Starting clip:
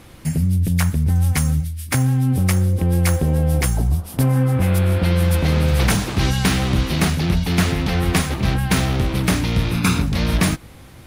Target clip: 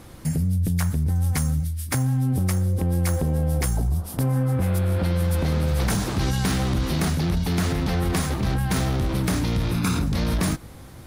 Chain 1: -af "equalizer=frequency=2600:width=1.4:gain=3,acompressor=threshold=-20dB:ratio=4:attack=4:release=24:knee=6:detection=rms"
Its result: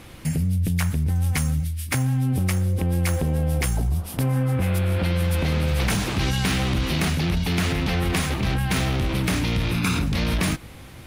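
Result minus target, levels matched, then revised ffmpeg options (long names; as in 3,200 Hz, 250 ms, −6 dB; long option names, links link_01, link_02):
2,000 Hz band +4.5 dB
-af "equalizer=frequency=2600:width=1.4:gain=-6,acompressor=threshold=-20dB:ratio=4:attack=4:release=24:knee=6:detection=rms"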